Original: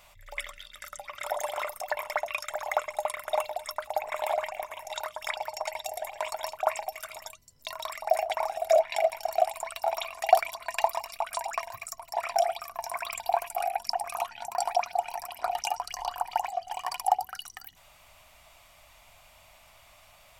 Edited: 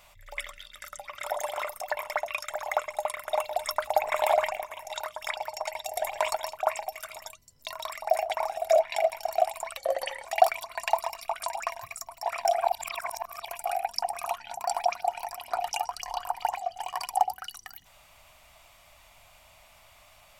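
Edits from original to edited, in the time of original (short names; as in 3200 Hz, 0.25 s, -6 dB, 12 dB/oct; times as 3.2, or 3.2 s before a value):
3.52–4.57 gain +5.5 dB
5.96–6.37 gain +5.5 dB
9.77–10.16 speed 81%
12.53–13.39 reverse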